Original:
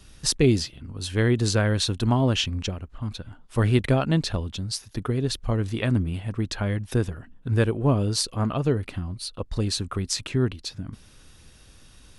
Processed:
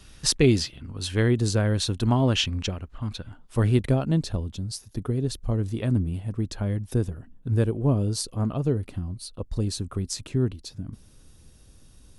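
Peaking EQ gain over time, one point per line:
peaking EQ 2.1 kHz 2.9 oct
1.07 s +2 dB
1.48 s -7.5 dB
2.39 s +1 dB
3.19 s +1 dB
4.04 s -10.5 dB

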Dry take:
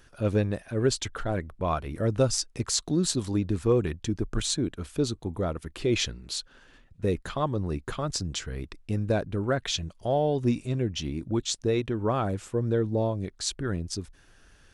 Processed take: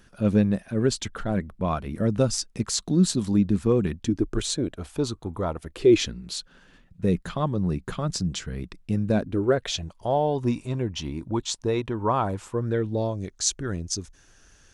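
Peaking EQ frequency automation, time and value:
peaking EQ +11 dB 0.51 oct
3.92 s 200 Hz
5.30 s 1.4 kHz
6.19 s 180 Hz
9.08 s 180 Hz
9.94 s 960 Hz
12.51 s 960 Hz
13.14 s 6.4 kHz

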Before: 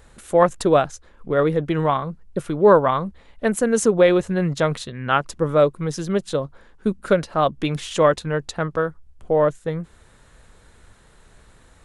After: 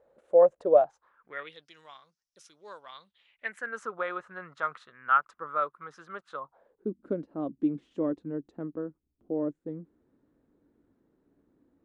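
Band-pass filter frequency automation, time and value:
band-pass filter, Q 5.1
0.73 s 550 Hz
1.36 s 2 kHz
1.70 s 5.6 kHz
2.81 s 5.6 kHz
3.77 s 1.3 kHz
6.35 s 1.3 kHz
6.93 s 290 Hz

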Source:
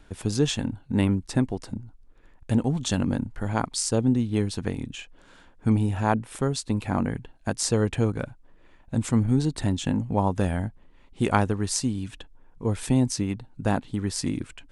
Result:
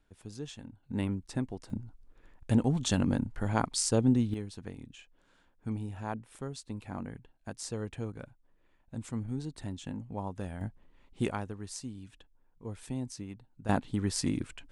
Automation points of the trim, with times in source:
-18.5 dB
from 0.83 s -10 dB
from 1.70 s -3 dB
from 4.34 s -14 dB
from 10.61 s -6.5 dB
from 11.31 s -15 dB
from 13.69 s -3 dB

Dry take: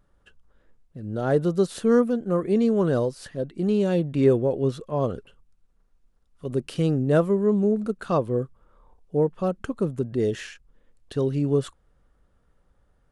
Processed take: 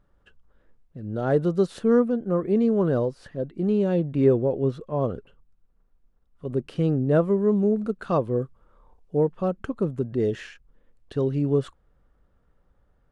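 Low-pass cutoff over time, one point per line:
low-pass 6 dB/octave
3.1 kHz
from 1.79 s 1.6 kHz
from 7.28 s 3.2 kHz
from 8.42 s 5.5 kHz
from 9.35 s 2.6 kHz

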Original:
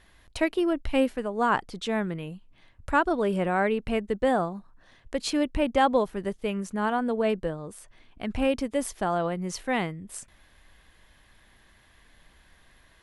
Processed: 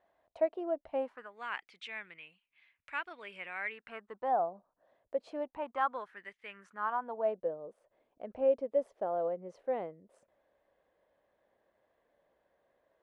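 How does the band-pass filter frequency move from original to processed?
band-pass filter, Q 4
0.96 s 650 Hz
1.38 s 2.3 kHz
3.61 s 2.3 kHz
4.53 s 600 Hz
5.24 s 600 Hz
6.33 s 2.2 kHz
7.49 s 550 Hz

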